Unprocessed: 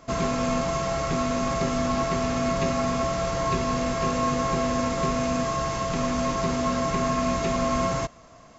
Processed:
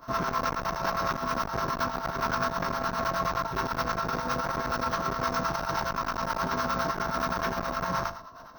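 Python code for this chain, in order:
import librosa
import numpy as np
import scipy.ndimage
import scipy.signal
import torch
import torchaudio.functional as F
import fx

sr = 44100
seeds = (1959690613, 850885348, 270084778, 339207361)

y = np.repeat(scipy.signal.resample_poly(x, 1, 2), 2)[:len(x)]
y = fx.band_shelf(y, sr, hz=1400.0, db=16.0, octaves=1.0)
y = fx.room_flutter(y, sr, wall_m=6.6, rt60_s=0.4)
y = fx.harmonic_tremolo(y, sr, hz=9.6, depth_pct=70, crossover_hz=790.0)
y = fx.formant_shift(y, sr, semitones=-3)
y = fx.over_compress(y, sr, threshold_db=-21.0, ratio=-0.5)
y = fx.high_shelf(y, sr, hz=5200.0, db=7.0)
y = fx.transformer_sat(y, sr, knee_hz=620.0)
y = F.gain(torch.from_numpy(y), -5.5).numpy()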